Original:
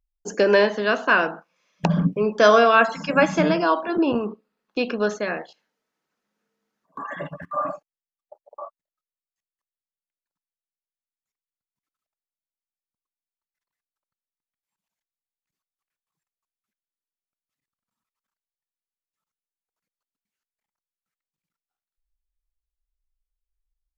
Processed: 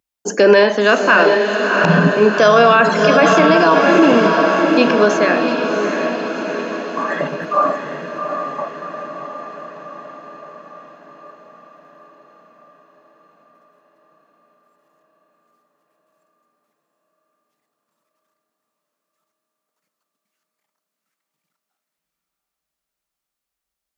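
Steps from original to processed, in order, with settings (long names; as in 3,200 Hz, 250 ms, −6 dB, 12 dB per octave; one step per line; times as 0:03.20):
high-pass filter 180 Hz 12 dB per octave
feedback delay with all-pass diffusion 720 ms, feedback 60%, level −6.5 dB
on a send at −21 dB: convolution reverb RT60 1.1 s, pre-delay 3 ms
on the sum: boost into a limiter +11.5 dB
level −1 dB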